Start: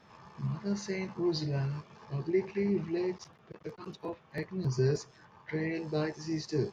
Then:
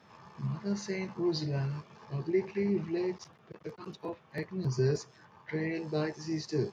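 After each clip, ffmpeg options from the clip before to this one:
-af "highpass=73"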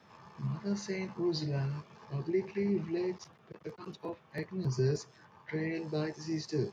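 -filter_complex "[0:a]acrossover=split=390|3000[a][b][c];[b]acompressor=threshold=-37dB:ratio=2[d];[a][d][c]amix=inputs=3:normalize=0,volume=-1dB"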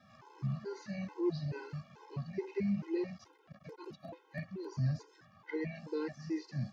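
-filter_complex "[0:a]acrossover=split=3500[a][b];[b]acompressor=threshold=-58dB:ratio=4:attack=1:release=60[c];[a][c]amix=inputs=2:normalize=0,afftfilt=real='re*gt(sin(2*PI*2.3*pts/sr)*(1-2*mod(floor(b*sr/1024/270),2)),0)':imag='im*gt(sin(2*PI*2.3*pts/sr)*(1-2*mod(floor(b*sr/1024/270),2)),0)':win_size=1024:overlap=0.75"

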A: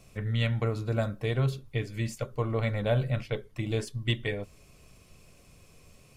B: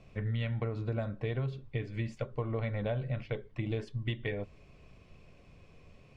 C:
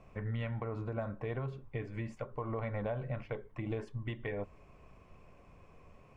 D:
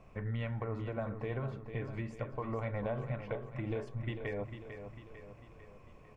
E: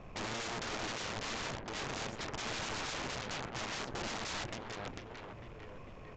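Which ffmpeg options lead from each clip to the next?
-af "lowpass=2.9k,equalizer=f=1.3k:t=o:w=0.35:g=-3.5,acompressor=threshold=-30dB:ratio=6"
-af "equalizer=f=125:t=o:w=1:g=-3,equalizer=f=1k:t=o:w=1:g=8,equalizer=f=4k:t=o:w=1:g=-10,alimiter=level_in=2.5dB:limit=-24dB:level=0:latency=1:release=107,volume=-2.5dB,volume=-1dB"
-af "aecho=1:1:448|896|1344|1792|2240|2688:0.355|0.185|0.0959|0.0499|0.0259|0.0135"
-af "aeval=exprs='(mod(75*val(0)+1,2)-1)/75':c=same,aeval=exprs='0.0133*(cos(1*acos(clip(val(0)/0.0133,-1,1)))-cos(1*PI/2))+0.00335*(cos(3*acos(clip(val(0)/0.0133,-1,1)))-cos(3*PI/2))+0.00299*(cos(4*acos(clip(val(0)/0.0133,-1,1)))-cos(4*PI/2))+0.00266*(cos(6*acos(clip(val(0)/0.0133,-1,1)))-cos(6*PI/2))+0.00422*(cos(7*acos(clip(val(0)/0.0133,-1,1)))-cos(7*PI/2))':c=same,aresample=16000,aresample=44100,volume=3.5dB"

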